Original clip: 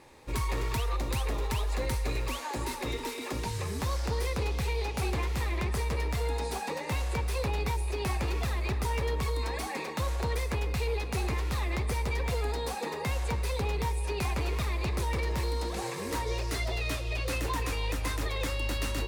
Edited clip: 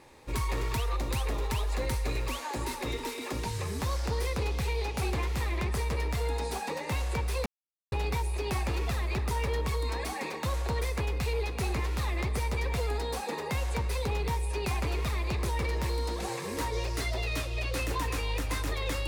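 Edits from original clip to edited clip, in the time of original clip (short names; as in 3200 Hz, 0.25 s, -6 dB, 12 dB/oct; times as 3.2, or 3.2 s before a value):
7.46 insert silence 0.46 s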